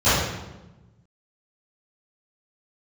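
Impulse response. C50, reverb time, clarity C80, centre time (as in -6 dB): -2.5 dB, 1.1 s, 1.5 dB, 87 ms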